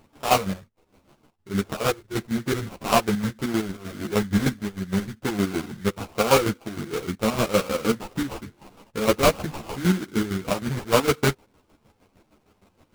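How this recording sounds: aliases and images of a low sample rate 1800 Hz, jitter 20%; chopped level 6.5 Hz, depth 65%, duty 40%; a shimmering, thickened sound

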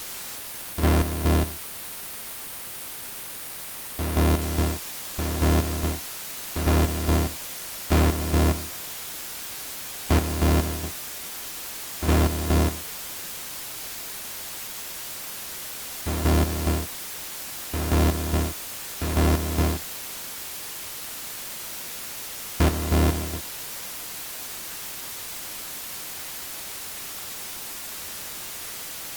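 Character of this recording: a buzz of ramps at a fixed pitch in blocks of 128 samples; chopped level 2.4 Hz, depth 65%, duty 45%; a quantiser's noise floor 6-bit, dither triangular; Opus

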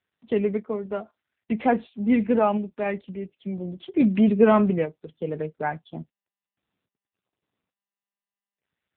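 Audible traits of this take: random-step tremolo; AMR-NB

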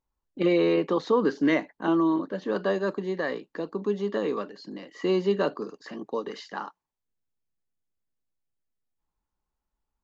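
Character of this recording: noise floor -86 dBFS; spectral tilt -5.0 dB/oct

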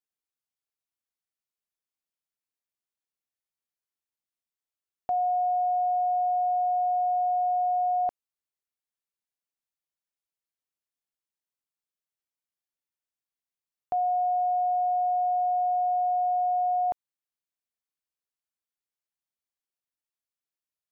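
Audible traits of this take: noise floor -94 dBFS; spectral tilt +4.5 dB/oct

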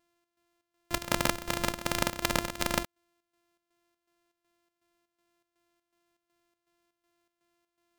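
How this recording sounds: a buzz of ramps at a fixed pitch in blocks of 128 samples; chopped level 2.7 Hz, depth 65%, duty 65%

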